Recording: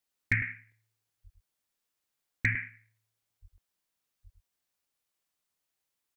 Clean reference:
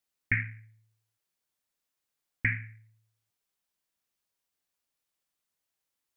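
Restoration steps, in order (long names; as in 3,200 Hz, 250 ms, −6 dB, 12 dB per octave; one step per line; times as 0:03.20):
clipped peaks rebuilt −15 dBFS
0:01.23–0:01.35: high-pass filter 140 Hz 24 dB per octave
0:03.41–0:03.53: high-pass filter 140 Hz 24 dB per octave
0:04.23–0:04.35: high-pass filter 140 Hz 24 dB per octave
repair the gap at 0:00.72/0:03.58, 2 ms
echo removal 105 ms −8 dB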